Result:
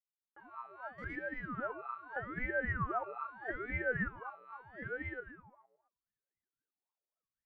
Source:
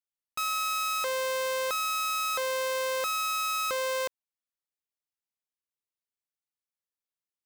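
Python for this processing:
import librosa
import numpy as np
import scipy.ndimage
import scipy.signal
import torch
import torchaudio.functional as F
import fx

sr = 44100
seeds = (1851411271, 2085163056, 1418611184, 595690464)

p1 = fx.fade_in_head(x, sr, length_s=1.91)
p2 = fx.over_compress(p1, sr, threshold_db=-38.0, ratio=-0.5)
p3 = p1 + (p2 * 10.0 ** (-1.0 / 20.0))
p4 = scipy.signal.sosfilt(scipy.signal.butter(4, 2200.0, 'lowpass', fs=sr, output='sos'), p3)
p5 = p4 + 10.0 ** (-3.0 / 20.0) * np.pad(p4, (int(1126 * sr / 1000.0), 0))[:len(p4)]
p6 = fx.lpc_monotone(p5, sr, seeds[0], pitch_hz=250.0, order=8)
p7 = fx.power_curve(p6, sr, exponent=0.35, at=(0.98, 1.55))
p8 = fx.echo_feedback(p7, sr, ms=113, feedback_pct=52, wet_db=-8.0)
p9 = fx.wah_lfo(p8, sr, hz=3.8, low_hz=490.0, high_hz=1000.0, q=16.0)
p10 = fx.ring_lfo(p9, sr, carrier_hz=570.0, swing_pct=90, hz=0.79)
y = p10 * 10.0 ** (8.5 / 20.0)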